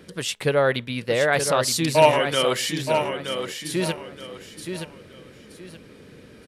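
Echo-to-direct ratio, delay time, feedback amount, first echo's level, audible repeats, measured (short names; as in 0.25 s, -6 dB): -6.5 dB, 0.923 s, 28%, -7.0 dB, 3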